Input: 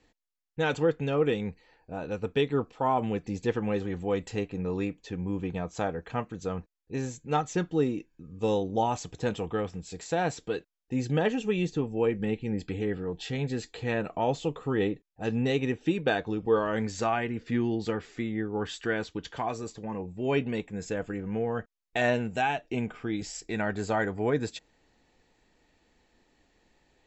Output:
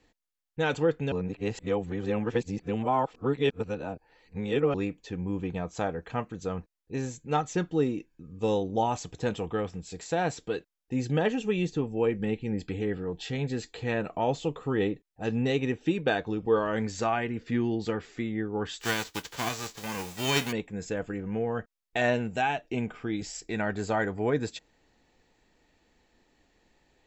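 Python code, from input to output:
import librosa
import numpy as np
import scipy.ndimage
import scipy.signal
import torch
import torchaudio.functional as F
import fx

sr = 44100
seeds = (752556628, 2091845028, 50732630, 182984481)

y = fx.envelope_flatten(x, sr, power=0.3, at=(18.8, 20.51), fade=0.02)
y = fx.edit(y, sr, fx.reverse_span(start_s=1.12, length_s=3.62), tone=tone)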